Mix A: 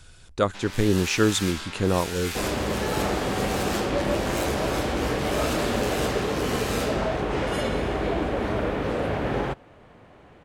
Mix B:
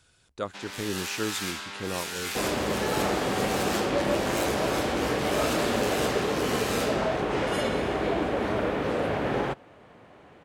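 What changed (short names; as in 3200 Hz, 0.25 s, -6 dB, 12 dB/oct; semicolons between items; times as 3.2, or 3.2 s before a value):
speech -9.5 dB; master: add HPF 150 Hz 6 dB/oct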